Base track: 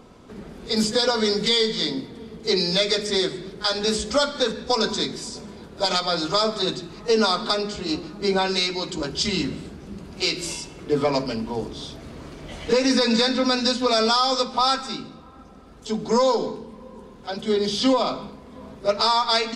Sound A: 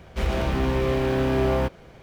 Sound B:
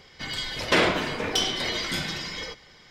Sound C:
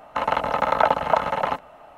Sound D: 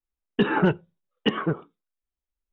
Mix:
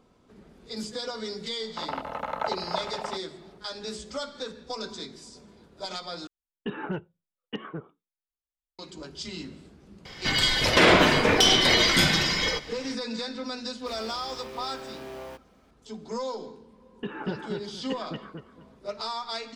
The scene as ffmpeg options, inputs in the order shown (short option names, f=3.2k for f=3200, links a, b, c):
-filter_complex "[4:a]asplit=2[a][b];[0:a]volume=-13.5dB[c];[2:a]alimiter=level_in=15dB:limit=-1dB:release=50:level=0:latency=1[d];[1:a]bass=f=250:g=-14,treble=f=4k:g=8[e];[b]aecho=1:1:235|470|705:0.668|0.154|0.0354[f];[c]asplit=2[g][h];[g]atrim=end=6.274[i];[a]atrim=end=2.52,asetpts=PTS-STARTPTS,volume=-12dB[j];[h]atrim=start=8.786[k];[3:a]atrim=end=1.97,asetpts=PTS-STARTPTS,volume=-11.5dB,afade=t=in:d=0.004:c=hsin,afade=t=out:st=1.966:d=0.004:c=hsin,adelay=1610[l];[d]atrim=end=2.9,asetpts=PTS-STARTPTS,volume=-6.5dB,afade=t=in:d=0.004:c=hsin,afade=t=out:st=2.896:d=0.004:c=hsin,adelay=10050[m];[e]atrim=end=2.02,asetpts=PTS-STARTPTS,volume=-15dB,afade=t=in:d=0.004:c=hsin,afade=t=out:st=2.016:d=0.004:c=hsin,adelay=13690[n];[f]atrim=end=2.52,asetpts=PTS-STARTPTS,volume=-13.5dB,afade=t=in:d=0.004:c=hsin,afade=t=out:st=2.516:d=0.004:c=hsin,adelay=16640[o];[i][j]acrossfade=d=0.004:c1=hsin:c2=hsin[p];[p][k]acrossfade=d=0.004:c1=hsin:c2=hsin[q];[q][l][m][n][o]amix=inputs=5:normalize=0"